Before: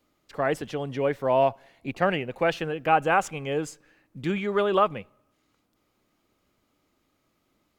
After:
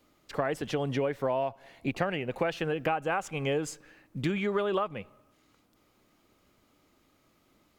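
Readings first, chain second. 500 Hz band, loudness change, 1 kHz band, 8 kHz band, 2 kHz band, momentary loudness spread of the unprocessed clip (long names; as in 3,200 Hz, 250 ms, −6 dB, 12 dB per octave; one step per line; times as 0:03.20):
−5.0 dB, −5.5 dB, −8.0 dB, −2.0 dB, −5.5 dB, 13 LU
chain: downward compressor 16 to 1, threshold −30 dBFS, peak gain reduction 16 dB
level +4.5 dB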